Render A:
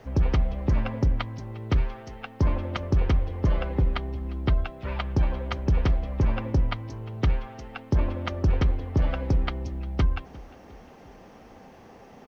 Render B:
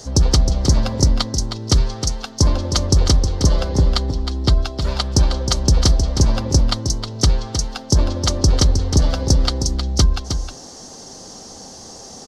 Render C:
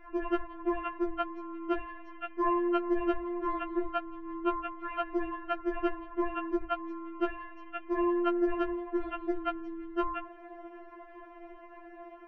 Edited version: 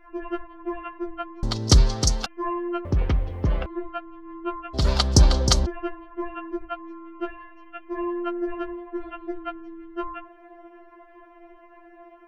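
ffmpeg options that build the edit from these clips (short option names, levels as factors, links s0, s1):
-filter_complex "[1:a]asplit=2[s0][s1];[2:a]asplit=4[s2][s3][s4][s5];[s2]atrim=end=1.432[s6];[s0]atrim=start=1.428:end=2.262[s7];[s3]atrim=start=2.258:end=2.852[s8];[0:a]atrim=start=2.848:end=3.662[s9];[s4]atrim=start=3.658:end=4.75[s10];[s1]atrim=start=4.73:end=5.67[s11];[s5]atrim=start=5.65[s12];[s6][s7]acrossfade=d=0.004:c1=hsin:c2=hsin[s13];[s13][s8]acrossfade=d=0.004:c1=hsin:c2=hsin[s14];[s14][s9]acrossfade=d=0.004:c1=hsin:c2=hsin[s15];[s15][s10]acrossfade=d=0.004:c1=hsin:c2=hsin[s16];[s16][s11]acrossfade=d=0.02:c1=tri:c2=tri[s17];[s17][s12]acrossfade=d=0.02:c1=tri:c2=tri"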